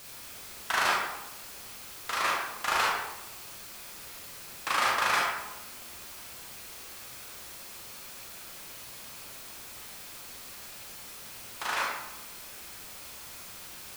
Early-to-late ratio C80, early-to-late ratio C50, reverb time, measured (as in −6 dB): 3.5 dB, 0.0 dB, 1.0 s